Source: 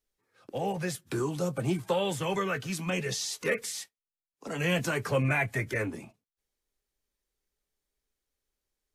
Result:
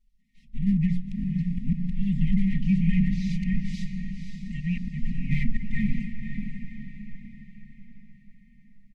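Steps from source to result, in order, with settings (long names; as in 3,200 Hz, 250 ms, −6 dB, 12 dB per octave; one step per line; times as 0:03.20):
lower of the sound and its delayed copy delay 4.8 ms
mains-hum notches 60/120/180/240/300/360 Hz
treble cut that deepens with the level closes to 2,000 Hz, closed at −29.5 dBFS
spectral tilt −3.5 dB per octave
comb filter 4.8 ms, depth 71%
dynamic equaliser 3,900 Hz, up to −6 dB, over −49 dBFS, Q 0.84
volume swells 222 ms
in parallel at −4.5 dB: gain into a clipping stage and back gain 22.5 dB
on the sum: linear-phase brick-wall band-stop 260–1,800 Hz
feedback delay with all-pass diffusion 543 ms, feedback 49%, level −7 dB
on a send at −17 dB: convolution reverb RT60 5.4 s, pre-delay 78 ms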